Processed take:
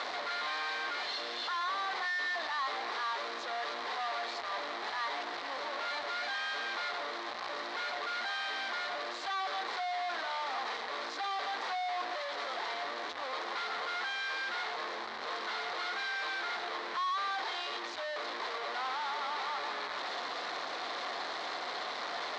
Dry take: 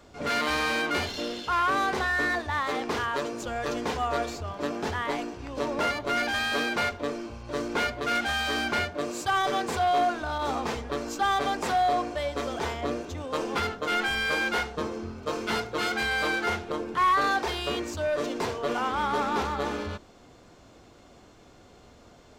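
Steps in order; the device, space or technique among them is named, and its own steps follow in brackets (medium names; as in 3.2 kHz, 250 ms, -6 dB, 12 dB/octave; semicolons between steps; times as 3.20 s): home computer beeper (one-bit comparator; cabinet simulation 640–4600 Hz, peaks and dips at 740 Hz +4 dB, 1.1 kHz +5 dB, 1.9 kHz +5 dB, 2.7 kHz -5 dB, 4 kHz +6 dB); trim -7.5 dB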